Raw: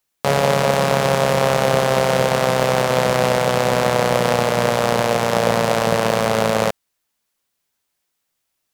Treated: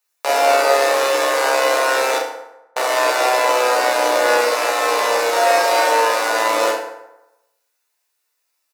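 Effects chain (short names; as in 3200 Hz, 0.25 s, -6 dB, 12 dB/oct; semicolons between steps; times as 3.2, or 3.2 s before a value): octaver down 1 oct, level +2 dB; 5.31–5.89 comb 5.5 ms, depth 64%; Bessel high-pass 610 Hz, order 8; notch 3200 Hz, Q 11; 2.17–2.76 mute; early reflections 13 ms -4.5 dB, 46 ms -6 dB; FDN reverb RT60 0.93 s, low-frequency decay 0.8×, high-frequency decay 0.6×, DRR 0 dB; gain -1 dB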